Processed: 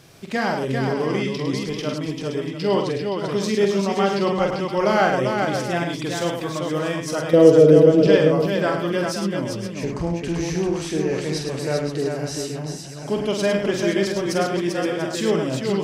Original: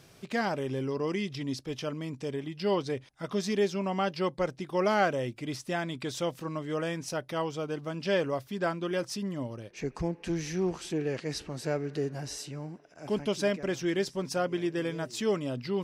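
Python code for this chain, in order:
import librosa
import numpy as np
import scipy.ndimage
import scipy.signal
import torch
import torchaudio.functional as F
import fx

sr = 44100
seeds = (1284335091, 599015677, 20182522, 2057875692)

y = fx.low_shelf_res(x, sr, hz=680.0, db=11.0, q=3.0, at=(7.33, 8.07))
y = fx.echo_multitap(y, sr, ms=(46, 105, 393, 521, 690), db=(-5.5, -6.5, -4.5, -9.5, -13.0))
y = y * librosa.db_to_amplitude(6.0)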